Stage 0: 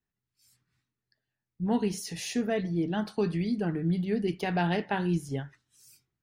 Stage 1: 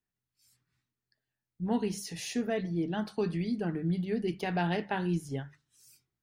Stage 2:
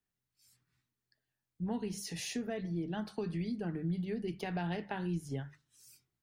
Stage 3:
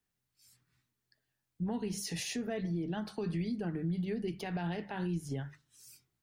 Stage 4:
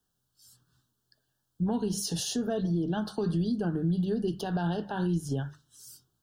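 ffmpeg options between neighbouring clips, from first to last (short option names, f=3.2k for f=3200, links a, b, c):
-af "bandreject=f=50:t=h:w=6,bandreject=f=100:t=h:w=6,bandreject=f=150:t=h:w=6,bandreject=f=200:t=h:w=6,volume=-2.5dB"
-filter_complex "[0:a]acrossover=split=130[a][b];[b]acompressor=threshold=-37dB:ratio=3[c];[a][c]amix=inputs=2:normalize=0"
-af "alimiter=level_in=7dB:limit=-24dB:level=0:latency=1:release=108,volume=-7dB,volume=3.5dB"
-af "asuperstop=centerf=2200:order=8:qfactor=1.8,volume=6.5dB"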